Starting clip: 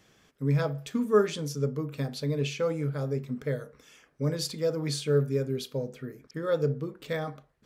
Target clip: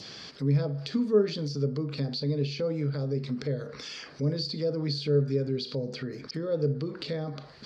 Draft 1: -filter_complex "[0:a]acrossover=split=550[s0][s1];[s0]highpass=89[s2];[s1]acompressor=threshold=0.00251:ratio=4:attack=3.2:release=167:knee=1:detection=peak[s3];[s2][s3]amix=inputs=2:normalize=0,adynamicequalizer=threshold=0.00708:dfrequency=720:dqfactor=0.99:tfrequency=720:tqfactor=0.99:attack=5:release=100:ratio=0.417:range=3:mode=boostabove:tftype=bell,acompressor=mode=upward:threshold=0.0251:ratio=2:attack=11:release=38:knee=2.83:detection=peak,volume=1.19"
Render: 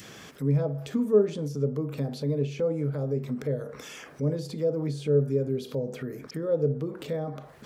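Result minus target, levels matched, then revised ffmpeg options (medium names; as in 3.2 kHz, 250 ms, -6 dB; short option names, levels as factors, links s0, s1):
4 kHz band -11.5 dB; 2 kHz band -3.5 dB
-filter_complex "[0:a]acrossover=split=550[s0][s1];[s0]highpass=89[s2];[s1]acompressor=threshold=0.00251:ratio=4:attack=3.2:release=167:knee=1:detection=peak,lowpass=f=4600:t=q:w=8.9[s3];[s2][s3]amix=inputs=2:normalize=0,adynamicequalizer=threshold=0.00708:dfrequency=1700:dqfactor=0.99:tfrequency=1700:tqfactor=0.99:attack=5:release=100:ratio=0.417:range=3:mode=boostabove:tftype=bell,acompressor=mode=upward:threshold=0.0251:ratio=2:attack=11:release=38:knee=2.83:detection=peak,volume=1.19"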